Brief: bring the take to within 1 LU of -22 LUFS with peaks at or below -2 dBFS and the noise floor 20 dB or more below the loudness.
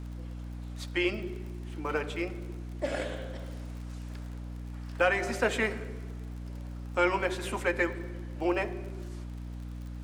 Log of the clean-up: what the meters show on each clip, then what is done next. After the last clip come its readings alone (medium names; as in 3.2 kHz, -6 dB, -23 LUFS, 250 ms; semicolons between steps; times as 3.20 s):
tick rate 47 per s; hum 60 Hz; highest harmonic 300 Hz; hum level -37 dBFS; loudness -33.5 LUFS; peak level -12.5 dBFS; loudness target -22.0 LUFS
-> de-click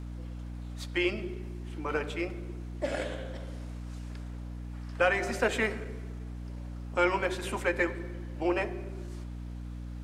tick rate 0.20 per s; hum 60 Hz; highest harmonic 300 Hz; hum level -37 dBFS
-> de-hum 60 Hz, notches 5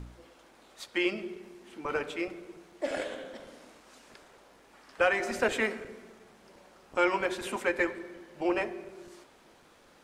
hum not found; loudness -31.5 LUFS; peak level -13.0 dBFS; loudness target -22.0 LUFS
-> trim +9.5 dB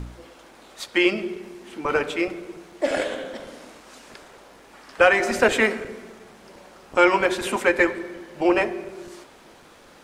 loudness -22.0 LUFS; peak level -3.5 dBFS; noise floor -50 dBFS